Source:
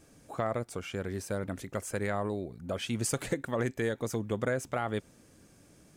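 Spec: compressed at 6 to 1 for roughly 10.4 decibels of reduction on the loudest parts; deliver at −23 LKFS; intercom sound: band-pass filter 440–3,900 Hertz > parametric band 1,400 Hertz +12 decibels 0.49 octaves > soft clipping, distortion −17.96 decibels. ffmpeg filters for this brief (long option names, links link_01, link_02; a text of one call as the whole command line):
ffmpeg -i in.wav -af "acompressor=threshold=-38dB:ratio=6,highpass=440,lowpass=3900,equalizer=frequency=1400:width_type=o:width=0.49:gain=12,asoftclip=threshold=-29.5dB,volume=21dB" out.wav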